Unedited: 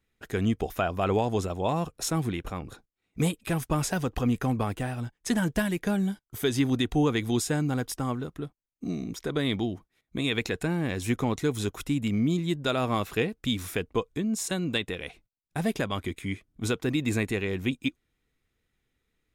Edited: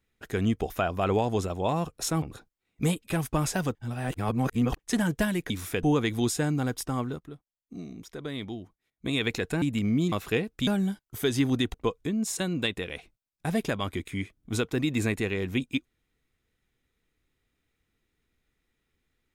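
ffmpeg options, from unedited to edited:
-filter_complex "[0:a]asplit=12[s0][s1][s2][s3][s4][s5][s6][s7][s8][s9][s10][s11];[s0]atrim=end=2.222[s12];[s1]atrim=start=2.588:end=4.122[s13];[s2]atrim=start=4.118:end=5.162,asetpts=PTS-STARTPTS,areverse[s14];[s3]atrim=start=5.158:end=5.872[s15];[s4]atrim=start=13.518:end=13.852[s16];[s5]atrim=start=6.938:end=8.312[s17];[s6]atrim=start=8.308:end=10.162,asetpts=PTS-STARTPTS,volume=0.398[s18];[s7]atrim=start=10.158:end=10.732[s19];[s8]atrim=start=11.908:end=12.412[s20];[s9]atrim=start=12.968:end=13.522[s21];[s10]atrim=start=5.868:end=6.942[s22];[s11]atrim=start=13.848[s23];[s12][s13]acrossfade=d=0.004:c1=hsin:c2=hsin[s24];[s24][s14]acrossfade=d=0.004:c1=hsin:c2=hsin[s25];[s25][s15]acrossfade=d=0.004:c1=hsin:c2=hsin[s26];[s26][s16]acrossfade=d=0.004:c1=hsin:c2=hsin[s27];[s27][s17]acrossfade=d=0.004:c1=hsin:c2=hsin[s28];[s28][s18]acrossfade=d=0.004:c1=hsin:c2=hsin[s29];[s29][s19]acrossfade=d=0.004:c1=hsin:c2=hsin[s30];[s30][s20]acrossfade=d=0.004:c1=hsin:c2=hsin[s31];[s31][s21]acrossfade=d=0.004:c1=hsin:c2=hsin[s32];[s32][s22]acrossfade=d=0.004:c1=hsin:c2=hsin[s33];[s33][s23]acrossfade=d=0.004:c1=hsin:c2=hsin"

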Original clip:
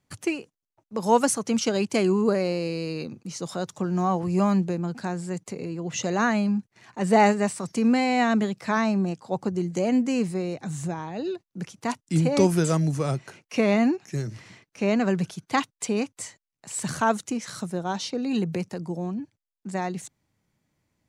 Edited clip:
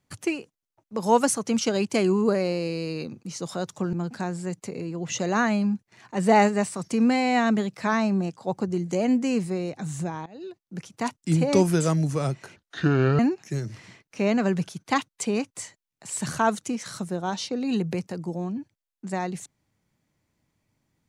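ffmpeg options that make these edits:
-filter_complex "[0:a]asplit=5[s0][s1][s2][s3][s4];[s0]atrim=end=3.932[s5];[s1]atrim=start=4.768:end=11.1,asetpts=PTS-STARTPTS,afade=t=out:st=6.328:d=0.004:c=hsin:silence=0.133352[s6];[s2]atrim=start=11.1:end=13.404,asetpts=PTS-STARTPTS,afade=t=in:d=0.67:silence=0.133352[s7];[s3]atrim=start=13.4:end=13.81,asetpts=PTS-STARTPTS,asetrate=28665,aresample=44100[s8];[s4]atrim=start=13.806[s9];[s6][s7]concat=n=2:v=0:a=1[s10];[s5][s10]acrossfade=d=0.004:c1=hsin:c2=hsin[s11];[s11][s8]acrossfade=d=0.004:c1=hsin:c2=hsin[s12];[s12][s9]acrossfade=d=0.004:c1=hsin:c2=hsin"

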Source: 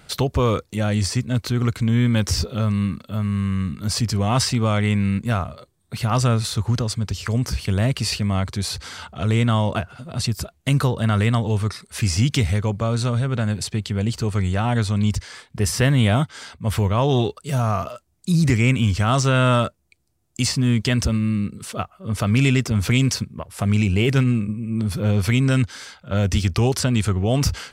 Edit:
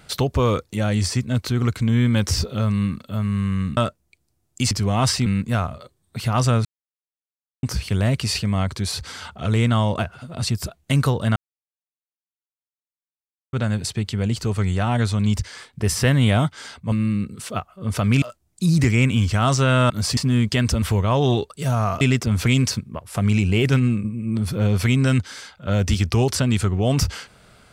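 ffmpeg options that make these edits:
-filter_complex "[0:a]asplit=14[s0][s1][s2][s3][s4][s5][s6][s7][s8][s9][s10][s11][s12][s13];[s0]atrim=end=3.772[s14];[s1]atrim=start=19.558:end=20.502[s15];[s2]atrim=start=4.038:end=4.592[s16];[s3]atrim=start=5.028:end=6.42,asetpts=PTS-STARTPTS,afade=t=out:st=1.388:d=0.004:c=hsin[s17];[s4]atrim=start=6.42:end=7.4,asetpts=PTS-STARTPTS,volume=0[s18];[s5]atrim=start=7.4:end=11.13,asetpts=PTS-STARTPTS,afade=t=in:d=0.004:c=hsin,afade=t=out:st=3.726:d=0.004:c=hsin[s19];[s6]atrim=start=11.13:end=13.3,asetpts=PTS-STARTPTS,volume=0[s20];[s7]atrim=start=13.3:end=16.692,asetpts=PTS-STARTPTS,afade=t=in:d=0.004:c=hsin[s21];[s8]atrim=start=21.148:end=22.452[s22];[s9]atrim=start=17.878:end=19.562[s23];[s10]atrim=start=3.768:end=4.042[s24];[s11]atrim=start=20.498:end=21.152[s25];[s12]atrim=start=16.688:end=17.882[s26];[s13]atrim=start=22.448[s27];[s14][s15]acrossfade=d=0.004:c1=hsin:c2=hsin[s28];[s28][s16]acrossfade=d=0.004:c1=hsin:c2=hsin[s29];[s17][s18][s19][s20][s21]concat=n=5:v=0:a=1[s30];[s29][s30]acrossfade=d=0.004:c1=hsin:c2=hsin[s31];[s31][s22]acrossfade=d=0.004:c1=hsin:c2=hsin[s32];[s32][s23]acrossfade=d=0.004:c1=hsin:c2=hsin[s33];[s33][s24]acrossfade=d=0.004:c1=hsin:c2=hsin[s34];[s34][s25]acrossfade=d=0.004:c1=hsin:c2=hsin[s35];[s35][s26]acrossfade=d=0.004:c1=hsin:c2=hsin[s36];[s36][s27]acrossfade=d=0.004:c1=hsin:c2=hsin"

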